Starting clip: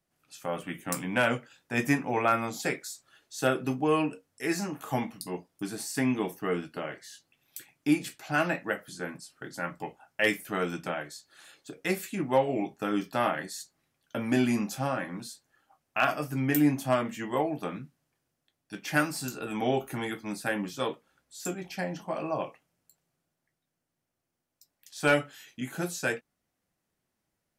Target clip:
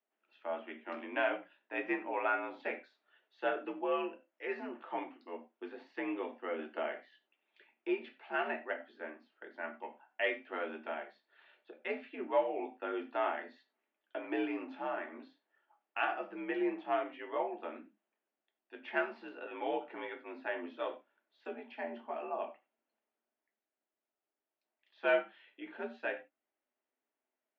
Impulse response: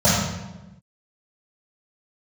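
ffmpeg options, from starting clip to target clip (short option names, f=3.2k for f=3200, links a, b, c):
-filter_complex "[0:a]asettb=1/sr,asplit=3[a][b][c];[a]atrim=end=6.594[d];[b]atrim=start=6.59:end=7.01,asetpts=PTS-STARTPTS,afade=t=in:d=0.004:c=qsin,afade=t=out:st=0.416:d=0.004:c=qsin,acontrast=28[e];[c]atrim=start=7.006[f];[d][e]acrossfade=d=0.004:c1=hsin:c2=qsin[g];[g][f]acrossfade=d=0.004:c1=qsin:c2=hsin,asplit=2[h][i];[1:a]atrim=start_sample=2205,atrim=end_sample=4410[j];[i][j]afir=irnorm=-1:irlink=0,volume=-29.5dB[k];[h][k]amix=inputs=2:normalize=0,highpass=f=260:t=q:w=0.5412,highpass=f=260:t=q:w=1.307,lowpass=f=3.1k:t=q:w=0.5176,lowpass=f=3.1k:t=q:w=0.7071,lowpass=f=3.1k:t=q:w=1.932,afreqshift=58,volume=-8dB"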